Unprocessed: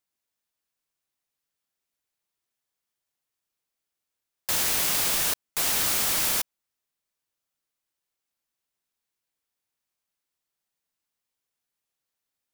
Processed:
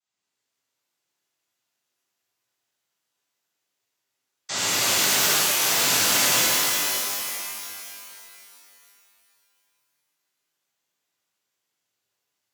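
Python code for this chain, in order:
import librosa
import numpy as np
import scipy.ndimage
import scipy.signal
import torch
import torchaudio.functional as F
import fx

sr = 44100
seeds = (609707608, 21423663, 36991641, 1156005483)

y = fx.noise_vocoder(x, sr, seeds[0], bands=16)
y = fx.rev_shimmer(y, sr, seeds[1], rt60_s=2.7, semitones=12, shimmer_db=-2, drr_db=-10.0)
y = y * librosa.db_to_amplitude(-3.0)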